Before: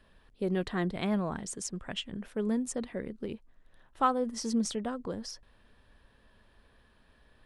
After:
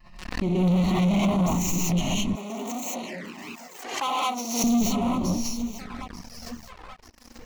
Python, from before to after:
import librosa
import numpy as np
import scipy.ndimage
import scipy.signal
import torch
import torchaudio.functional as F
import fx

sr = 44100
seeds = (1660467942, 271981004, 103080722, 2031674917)

y = fx.tracing_dist(x, sr, depth_ms=0.12)
y = fx.vibrato(y, sr, rate_hz=1.6, depth_cents=62.0)
y = fx.fixed_phaser(y, sr, hz=2300.0, stages=8)
y = fx.echo_feedback(y, sr, ms=887, feedback_pct=52, wet_db=-18.0)
y = fx.rev_gated(y, sr, seeds[0], gate_ms=240, shape='rising', drr_db=-7.0)
y = fx.leveller(y, sr, passes=5)
y = fx.highpass(y, sr, hz=480.0, slope=12, at=(2.35, 4.64))
y = fx.env_flanger(y, sr, rest_ms=5.7, full_db=-22.0)
y = fx.pre_swell(y, sr, db_per_s=66.0)
y = y * 10.0 ** (-6.0 / 20.0)